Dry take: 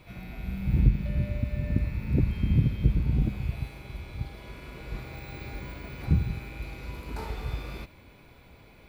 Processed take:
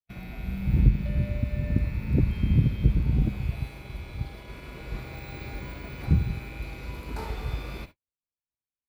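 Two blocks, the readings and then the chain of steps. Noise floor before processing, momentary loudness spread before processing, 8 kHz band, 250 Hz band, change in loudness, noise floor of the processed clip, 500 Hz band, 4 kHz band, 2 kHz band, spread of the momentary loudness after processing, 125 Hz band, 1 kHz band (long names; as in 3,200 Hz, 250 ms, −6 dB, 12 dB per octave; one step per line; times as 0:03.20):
−54 dBFS, 16 LU, can't be measured, +1.5 dB, +1.5 dB, below −85 dBFS, +1.5 dB, +1.5 dB, +1.5 dB, 16 LU, +1.5 dB, +1.5 dB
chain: noise gate −44 dBFS, range −56 dB
level +1.5 dB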